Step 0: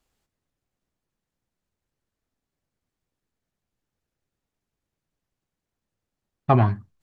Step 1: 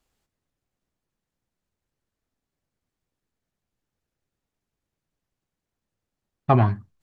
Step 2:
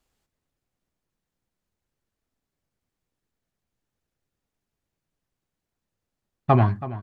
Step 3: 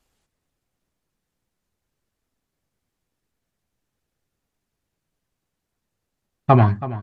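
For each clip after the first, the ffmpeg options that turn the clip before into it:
ffmpeg -i in.wav -af anull out.wav
ffmpeg -i in.wav -filter_complex "[0:a]asplit=2[link_01][link_02];[link_02]adelay=326.5,volume=-15dB,highshelf=frequency=4000:gain=-7.35[link_03];[link_01][link_03]amix=inputs=2:normalize=0" out.wav
ffmpeg -i in.wav -af "volume=4.5dB" -ar 48000 -c:a libmp3lame -b:a 56k out.mp3

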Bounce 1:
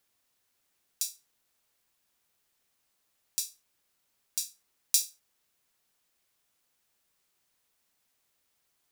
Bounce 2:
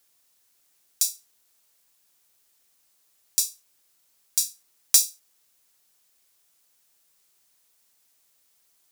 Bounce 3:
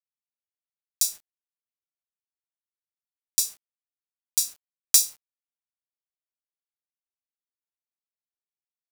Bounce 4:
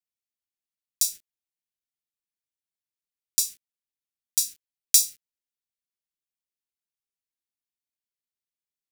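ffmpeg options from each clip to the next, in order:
ffmpeg -i in.wav -af "bass=frequency=250:gain=-3,treble=frequency=4000:gain=7,acontrast=39,volume=-2dB" out.wav
ffmpeg -i in.wav -af "acrusher=bits=7:mix=0:aa=0.000001" out.wav
ffmpeg -i in.wav -af "asuperstop=centerf=860:order=4:qfactor=0.54" out.wav

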